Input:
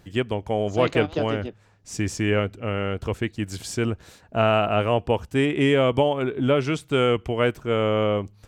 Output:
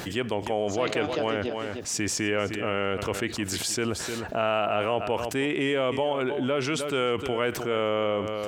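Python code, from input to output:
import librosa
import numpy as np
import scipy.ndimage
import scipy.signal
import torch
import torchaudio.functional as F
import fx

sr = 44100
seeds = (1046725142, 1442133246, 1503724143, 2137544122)

y = fx.highpass(x, sr, hz=370.0, slope=6)
y = y + 10.0 ** (-17.5 / 20.0) * np.pad(y, (int(307 * sr / 1000.0), 0))[:len(y)]
y = fx.env_flatten(y, sr, amount_pct=70)
y = F.gain(torch.from_numpy(y), -6.0).numpy()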